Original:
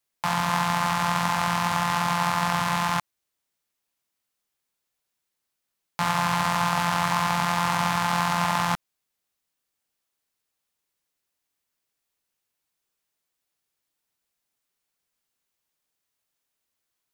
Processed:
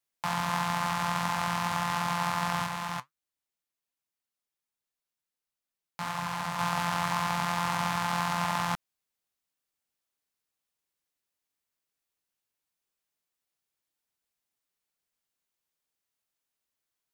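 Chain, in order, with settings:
0:02.66–0:06.59: flanger 1.4 Hz, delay 0.1 ms, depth 8 ms, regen +66%
level −5.5 dB

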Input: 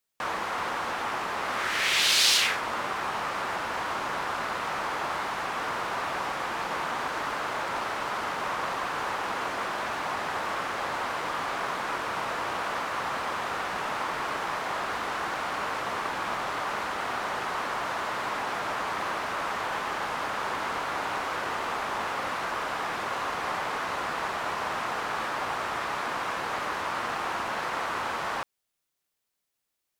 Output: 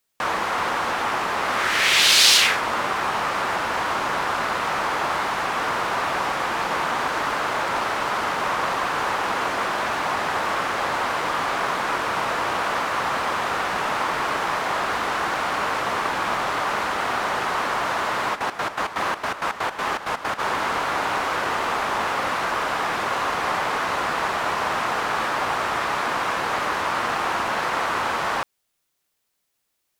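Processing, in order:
0:18.34–0:20.38: gate pattern "x.x.x.x.x" 163 BPM −12 dB
level +7 dB

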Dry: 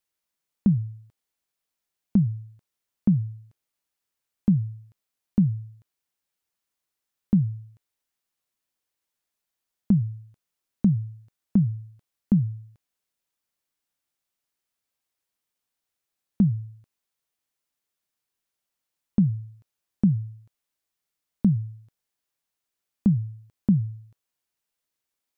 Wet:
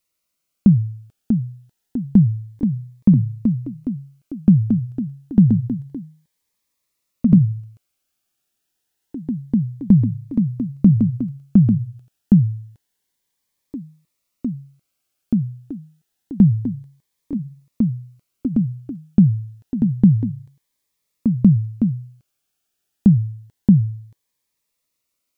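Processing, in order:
delay with pitch and tempo change per echo 714 ms, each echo +2 semitones, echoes 3, each echo −6 dB
phaser whose notches keep moving one way rising 0.28 Hz
level +8 dB

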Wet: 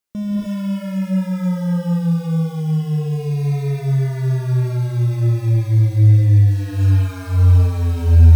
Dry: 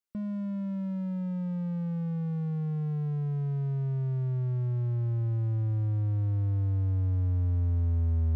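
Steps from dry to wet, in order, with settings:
in parallel at −7 dB: floating-point word with a short mantissa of 2 bits
on the sum: reverb whose tail is shaped and stops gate 330 ms rising, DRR −4.5 dB
level +5 dB

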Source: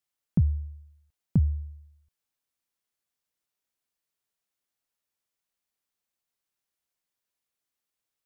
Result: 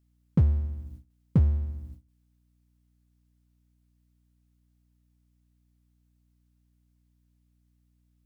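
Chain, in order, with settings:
power curve on the samples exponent 0.7
mains hum 60 Hz, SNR 14 dB
noise gate with hold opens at −34 dBFS

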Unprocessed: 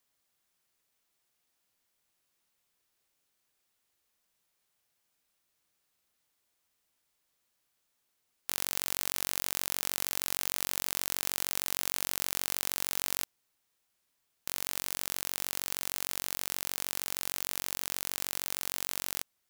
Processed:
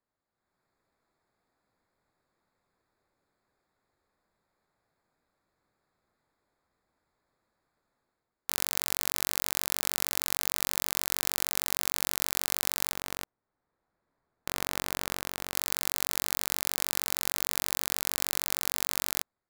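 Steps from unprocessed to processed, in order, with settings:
adaptive Wiener filter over 15 samples
0:12.92–0:15.54: high-shelf EQ 3,100 Hz −11 dB
automatic gain control gain up to 11 dB
level −1 dB

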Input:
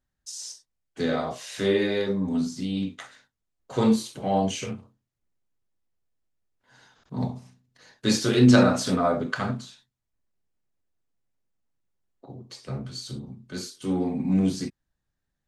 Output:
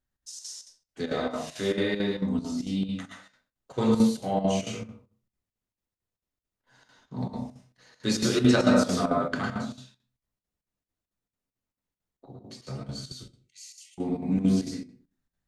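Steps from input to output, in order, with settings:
0:13.12–0:13.98: Chebyshev high-pass with heavy ripple 1,900 Hz, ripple 9 dB
convolution reverb RT60 0.40 s, pre-delay 101 ms, DRR 0 dB
square-wave tremolo 4.5 Hz, depth 65%, duty 75%
level −4 dB

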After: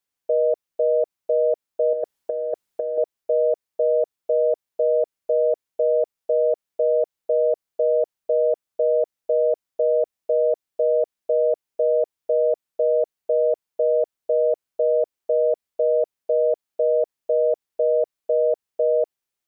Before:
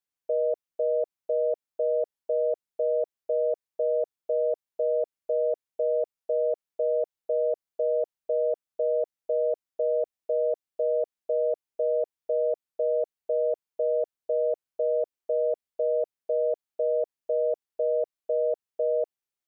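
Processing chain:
0:01.93–0:02.98: compressor whose output falls as the input rises −29 dBFS, ratio −0.5
level +6 dB

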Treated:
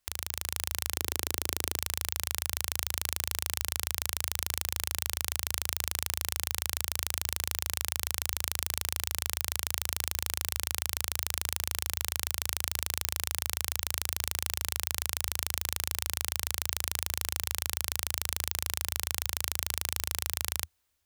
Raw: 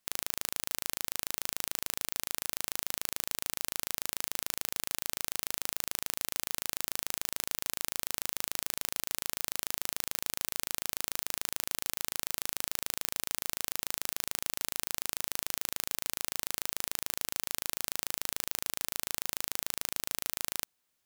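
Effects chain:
0:00.94–0:01.77: parametric band 360 Hz +10.5 dB 1.4 octaves
automatic gain control
low shelf with overshoot 110 Hz +10.5 dB, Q 3
level −1 dB

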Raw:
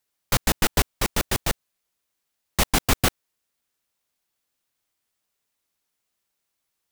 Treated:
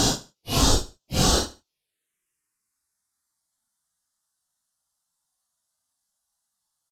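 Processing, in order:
low-pass filter 11,000 Hz 24 dB per octave
high-shelf EQ 3,900 Hz +6.5 dB
phaser swept by the level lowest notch 410 Hz, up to 2,200 Hz, full sweep at −17 dBFS
extreme stretch with random phases 4.3×, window 0.05 s, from 0:02.76
repeating echo 74 ms, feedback 23%, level −17 dB

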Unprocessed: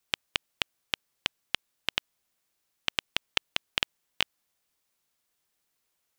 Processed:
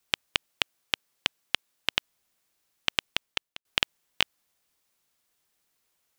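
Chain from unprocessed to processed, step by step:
0:00.49–0:01.96: low-shelf EQ 90 Hz −9 dB
0:03.04–0:03.65: fade out
level +3 dB

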